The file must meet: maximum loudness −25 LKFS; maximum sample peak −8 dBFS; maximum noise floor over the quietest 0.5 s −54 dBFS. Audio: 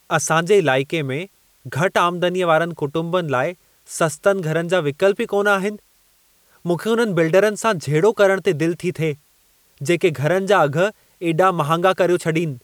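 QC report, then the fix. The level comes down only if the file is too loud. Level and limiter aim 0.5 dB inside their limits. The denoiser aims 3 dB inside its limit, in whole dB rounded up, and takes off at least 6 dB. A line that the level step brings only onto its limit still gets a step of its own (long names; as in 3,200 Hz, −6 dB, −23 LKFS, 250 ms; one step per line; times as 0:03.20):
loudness −19.0 LKFS: out of spec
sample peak −4.0 dBFS: out of spec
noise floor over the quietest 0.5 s −58 dBFS: in spec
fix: level −6.5 dB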